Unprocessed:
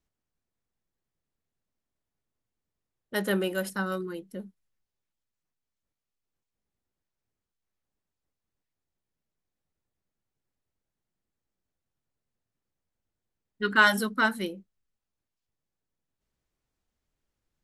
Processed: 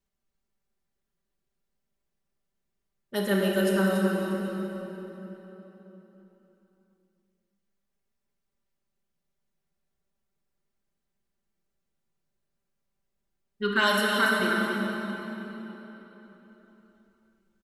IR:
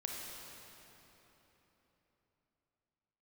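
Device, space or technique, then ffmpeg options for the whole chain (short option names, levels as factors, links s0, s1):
cave: -filter_complex "[0:a]aecho=1:1:284:0.398[s0];[1:a]atrim=start_sample=2205[s1];[s0][s1]afir=irnorm=-1:irlink=0,aecho=1:1:5.1:0.7,asettb=1/sr,asplit=3[s2][s3][s4];[s2]atrim=end=13.814[s5];[s3]atrim=start=13.81:end=14.4,asetpts=PTS-STARTPTS,afade=t=in:d=0.004:c=qsin,afade=t=out:st=0.586:d=0.004:c=qsin,lowshelf=f=170:g=-9[s6];[s4]atrim=start=14.396[s7];[s5][s6]acrossfade=d=0.004:c1=hsin:c2=qsin[s8];[s8][s7]acrossfade=d=0.004:c1=qsin:c2=hsin"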